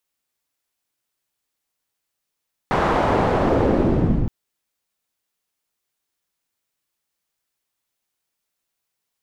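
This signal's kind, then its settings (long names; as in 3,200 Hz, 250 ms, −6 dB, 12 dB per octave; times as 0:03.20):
filter sweep on noise white, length 1.57 s lowpass, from 1,000 Hz, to 130 Hz, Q 1.1, linear, gain ramp +8 dB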